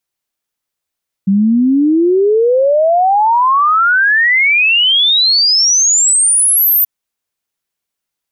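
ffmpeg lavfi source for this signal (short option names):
-f lavfi -i "aevalsrc='0.422*clip(min(t,5.58-t)/0.01,0,1)*sin(2*PI*190*5.58/log(14000/190)*(exp(log(14000/190)*t/5.58)-1))':d=5.58:s=44100"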